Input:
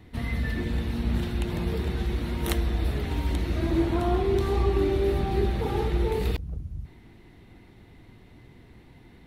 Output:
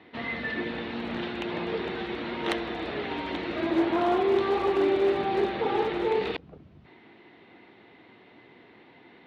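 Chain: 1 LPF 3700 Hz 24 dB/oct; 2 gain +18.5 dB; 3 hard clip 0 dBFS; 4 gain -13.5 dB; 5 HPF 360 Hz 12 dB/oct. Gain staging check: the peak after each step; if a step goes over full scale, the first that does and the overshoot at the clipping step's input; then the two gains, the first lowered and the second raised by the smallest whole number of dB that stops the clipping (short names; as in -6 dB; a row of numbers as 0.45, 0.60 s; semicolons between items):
-12.0, +6.5, 0.0, -13.5, -9.5 dBFS; step 2, 6.5 dB; step 2 +11.5 dB, step 4 -6.5 dB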